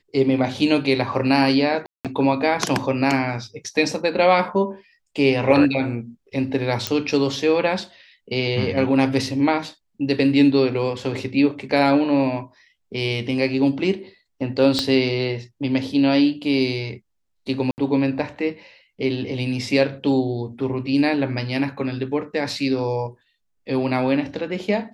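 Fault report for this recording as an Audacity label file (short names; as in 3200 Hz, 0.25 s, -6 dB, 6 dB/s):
1.860000	2.050000	gap 0.187 s
6.870000	6.870000	pop -5 dBFS
14.790000	14.790000	pop -7 dBFS
17.710000	17.780000	gap 69 ms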